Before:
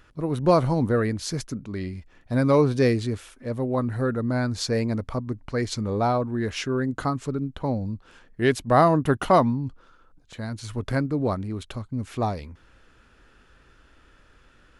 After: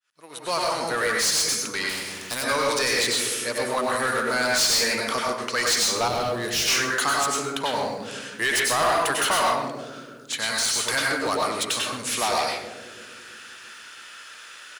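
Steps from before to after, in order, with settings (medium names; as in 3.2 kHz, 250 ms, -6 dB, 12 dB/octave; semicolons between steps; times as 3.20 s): fade-in on the opening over 1.87 s; in parallel at -8 dB: crossover distortion -38 dBFS; on the sum: compression 6:1, threshold -21 dBFS, peak gain reduction 11 dB; pre-emphasis filter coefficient 0.97; on a send: bucket-brigade echo 334 ms, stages 1024, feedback 51%, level -9.5 dB; on the sum: plate-style reverb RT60 0.61 s, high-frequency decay 0.55×, pre-delay 85 ms, DRR -1 dB; overdrive pedal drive 30 dB, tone 6.5 kHz, clips at -14.5 dBFS; 6.08–6.68 s: ten-band graphic EQ 125 Hz +7 dB, 1 kHz -8 dB, 2 kHz -6 dB, 8 kHz -4 dB; echo from a far wall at 22 m, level -13 dB; 1.89–2.44 s: spectrum-flattening compressor 2:1; trim +2.5 dB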